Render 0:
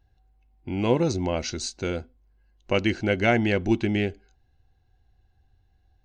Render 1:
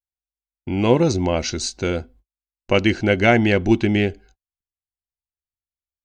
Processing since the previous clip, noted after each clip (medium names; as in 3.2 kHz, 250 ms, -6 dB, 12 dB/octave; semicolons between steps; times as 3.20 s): gate -53 dBFS, range -46 dB; trim +6 dB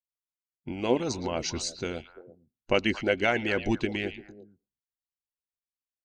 repeats whose band climbs or falls 114 ms, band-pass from 3 kHz, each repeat -1.4 oct, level -7 dB; harmonic-percussive split harmonic -14 dB; trim -5.5 dB